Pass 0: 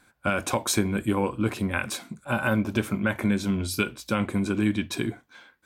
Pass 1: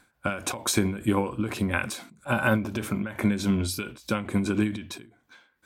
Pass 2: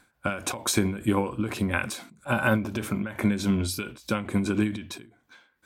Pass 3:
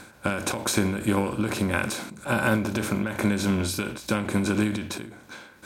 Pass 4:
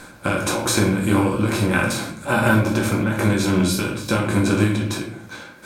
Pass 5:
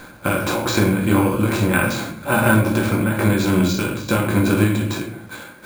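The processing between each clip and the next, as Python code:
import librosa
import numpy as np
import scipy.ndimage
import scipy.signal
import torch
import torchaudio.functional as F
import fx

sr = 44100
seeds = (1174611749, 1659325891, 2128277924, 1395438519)

y1 = fx.end_taper(x, sr, db_per_s=110.0)
y1 = y1 * 10.0 ** (2.0 / 20.0)
y2 = y1
y3 = fx.bin_compress(y2, sr, power=0.6)
y3 = y3 * 10.0 ** (-2.0 / 20.0)
y4 = fx.room_shoebox(y3, sr, seeds[0], volume_m3=62.0, walls='mixed', distance_m=0.77)
y4 = y4 * 10.0 ** (2.5 / 20.0)
y5 = np.repeat(scipy.signal.resample_poly(y4, 1, 4), 4)[:len(y4)]
y5 = y5 * 10.0 ** (1.5 / 20.0)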